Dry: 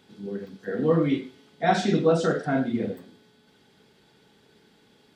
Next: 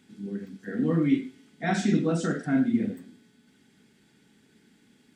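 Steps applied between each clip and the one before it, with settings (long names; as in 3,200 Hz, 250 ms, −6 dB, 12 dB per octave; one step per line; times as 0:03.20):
octave-band graphic EQ 250/500/1,000/2,000/4,000/8,000 Hz +9/−7/−5/+5/−5/+8 dB
level −4 dB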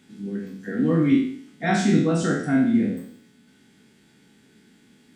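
peak hold with a decay on every bin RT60 0.59 s
level +3 dB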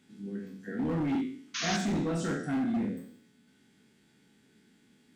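gain into a clipping stage and back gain 18.5 dB
sound drawn into the spectrogram noise, 0:01.54–0:01.77, 1,000–6,800 Hz −26 dBFS
level −8 dB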